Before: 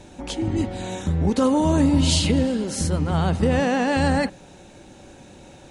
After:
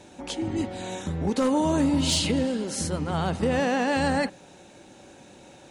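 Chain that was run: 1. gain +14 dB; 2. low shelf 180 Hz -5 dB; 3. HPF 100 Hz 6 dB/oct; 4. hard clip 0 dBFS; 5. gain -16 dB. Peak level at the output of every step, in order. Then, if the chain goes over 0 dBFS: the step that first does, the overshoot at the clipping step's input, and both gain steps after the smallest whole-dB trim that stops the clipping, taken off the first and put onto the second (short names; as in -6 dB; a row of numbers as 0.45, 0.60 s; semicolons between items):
+7.5, +6.5, +6.0, 0.0, -16.0 dBFS; step 1, 6.0 dB; step 1 +8 dB, step 5 -10 dB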